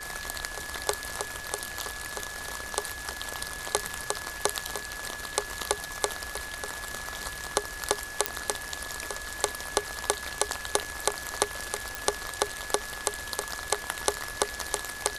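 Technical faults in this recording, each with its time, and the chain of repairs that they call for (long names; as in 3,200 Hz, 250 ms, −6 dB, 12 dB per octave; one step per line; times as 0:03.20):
whistle 1,700 Hz −39 dBFS
0:08.26: click −5 dBFS
0:11.95: click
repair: click removal
notch filter 1,700 Hz, Q 30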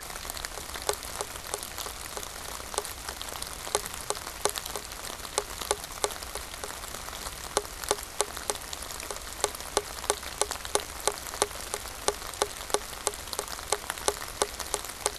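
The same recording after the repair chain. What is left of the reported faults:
none of them is left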